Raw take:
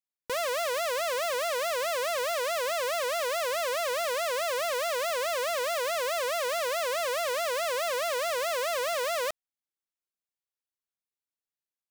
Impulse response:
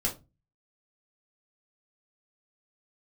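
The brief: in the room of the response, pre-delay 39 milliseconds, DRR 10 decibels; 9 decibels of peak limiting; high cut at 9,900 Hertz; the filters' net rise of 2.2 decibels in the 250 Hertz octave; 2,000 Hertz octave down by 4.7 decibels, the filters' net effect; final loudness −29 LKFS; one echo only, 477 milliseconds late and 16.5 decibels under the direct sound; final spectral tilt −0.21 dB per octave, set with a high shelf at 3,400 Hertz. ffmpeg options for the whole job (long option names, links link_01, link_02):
-filter_complex "[0:a]lowpass=9900,equalizer=frequency=250:width_type=o:gain=3,equalizer=frequency=2000:width_type=o:gain=-3.5,highshelf=frequency=3400:gain=-8,alimiter=level_in=9dB:limit=-24dB:level=0:latency=1,volume=-9dB,aecho=1:1:477:0.15,asplit=2[link_01][link_02];[1:a]atrim=start_sample=2205,adelay=39[link_03];[link_02][link_03]afir=irnorm=-1:irlink=0,volume=-15.5dB[link_04];[link_01][link_04]amix=inputs=2:normalize=0,volume=9.5dB"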